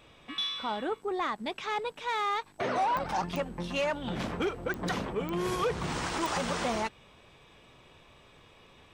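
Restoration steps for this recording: clip repair -22 dBFS; de-click

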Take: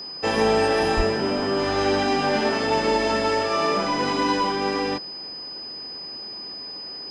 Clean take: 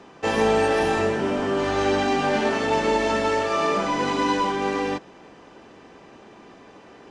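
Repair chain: notch 5000 Hz, Q 30; 0.96–1.08 HPF 140 Hz 24 dB/oct

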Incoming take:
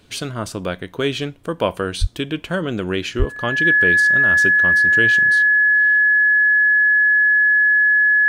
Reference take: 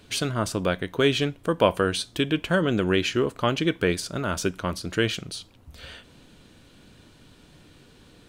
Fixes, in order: notch 1700 Hz, Q 30; de-plosive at 2/3.18; gain correction +10.5 dB, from 5.56

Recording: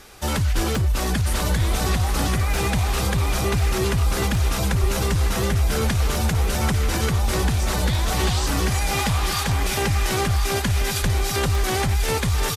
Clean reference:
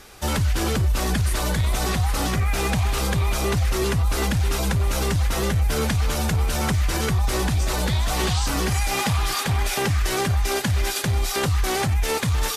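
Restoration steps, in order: de-click; de-plosive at 0.55/4.8/11.01; inverse comb 1.041 s -7.5 dB

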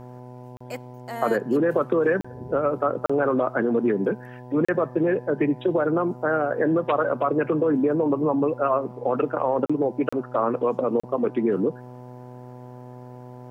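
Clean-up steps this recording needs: de-hum 124.5 Hz, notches 8; interpolate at 0.57/2.21/3.06/4.65/9.66/10.09/11, 35 ms

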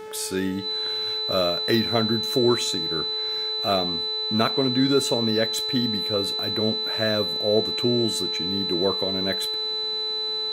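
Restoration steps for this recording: de-hum 433.1 Hz, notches 22; notch 4000 Hz, Q 30

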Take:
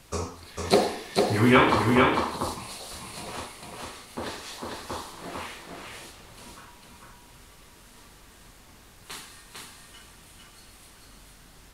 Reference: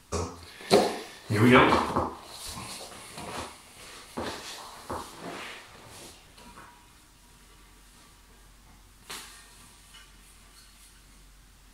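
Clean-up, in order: expander -44 dBFS, range -21 dB; inverse comb 0.45 s -3 dB

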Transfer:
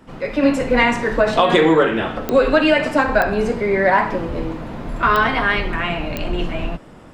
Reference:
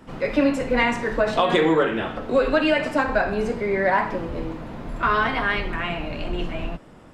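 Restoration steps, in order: de-click; gain correction -5 dB, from 0.43

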